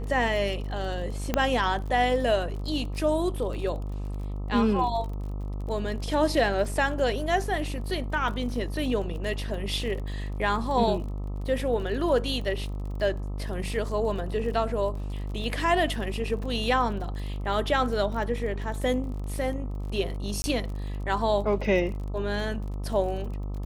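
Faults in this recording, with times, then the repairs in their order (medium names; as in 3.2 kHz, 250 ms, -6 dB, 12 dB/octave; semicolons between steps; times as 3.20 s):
buzz 50 Hz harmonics 26 -32 dBFS
crackle 38 per s -36 dBFS
1.34 s: pop -10 dBFS
20.42–20.44 s: dropout 20 ms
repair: de-click; de-hum 50 Hz, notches 26; interpolate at 20.42 s, 20 ms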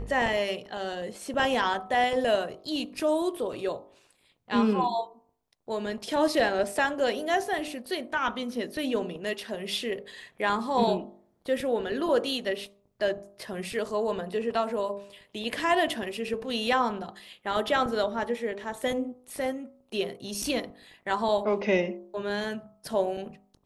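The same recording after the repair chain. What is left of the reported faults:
nothing left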